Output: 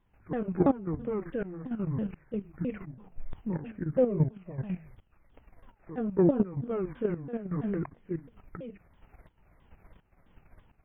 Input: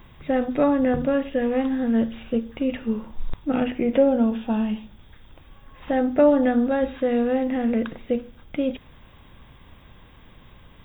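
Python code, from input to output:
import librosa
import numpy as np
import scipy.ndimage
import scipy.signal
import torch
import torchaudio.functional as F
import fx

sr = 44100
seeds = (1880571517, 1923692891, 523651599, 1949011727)

y = fx.pitch_ramps(x, sr, semitones=-10.0, every_ms=331)
y = fx.tremolo_shape(y, sr, shape='saw_up', hz=1.4, depth_pct=85)
y = fx.level_steps(y, sr, step_db=10)
y = fx.high_shelf(y, sr, hz=3300.0, db=-10.5)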